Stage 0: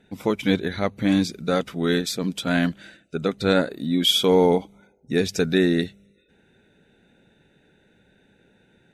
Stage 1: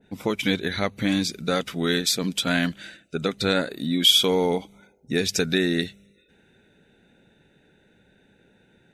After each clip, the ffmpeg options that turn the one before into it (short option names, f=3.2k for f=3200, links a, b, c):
-af "acompressor=threshold=-22dB:ratio=2,adynamicequalizer=threshold=0.00891:dfrequency=1500:dqfactor=0.7:tfrequency=1500:tqfactor=0.7:attack=5:release=100:ratio=0.375:range=3.5:mode=boostabove:tftype=highshelf"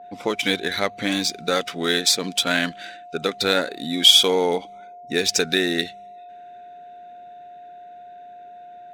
-af "aeval=exprs='val(0)+0.00794*sin(2*PI*710*n/s)':c=same,adynamicsmooth=sensitivity=7.5:basefreq=4.6k,bass=f=250:g=-12,treble=f=4k:g=4,volume=3.5dB"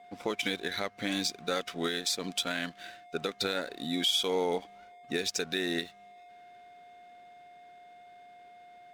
-af "alimiter=limit=-12dB:level=0:latency=1:release=244,aeval=exprs='sgn(val(0))*max(abs(val(0))-0.00447,0)':c=same,volume=-6dB"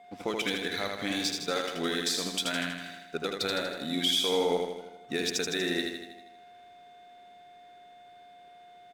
-af "aecho=1:1:80|160|240|320|400|480|560|640:0.631|0.353|0.198|0.111|0.0621|0.0347|0.0195|0.0109"